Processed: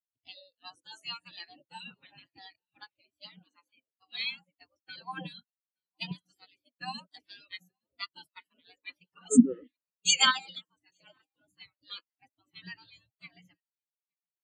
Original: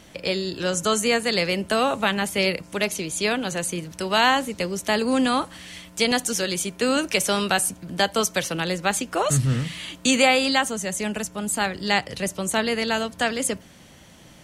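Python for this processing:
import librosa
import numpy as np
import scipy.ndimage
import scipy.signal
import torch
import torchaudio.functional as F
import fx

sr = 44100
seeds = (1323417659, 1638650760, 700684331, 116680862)

p1 = fx.spec_gate(x, sr, threshold_db=-15, keep='weak')
p2 = scipy.signal.sosfilt(scipy.signal.butter(2, 110.0, 'highpass', fs=sr, output='sos'), p1)
p3 = fx.low_shelf(p2, sr, hz=250.0, db=7.0)
p4 = p3 + fx.echo_single(p3, sr, ms=867, db=-13.0, dry=0)
y = fx.spectral_expand(p4, sr, expansion=4.0)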